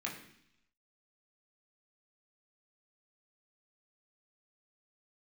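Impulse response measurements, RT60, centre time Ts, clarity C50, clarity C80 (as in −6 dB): 0.70 s, 28 ms, 7.5 dB, 10.5 dB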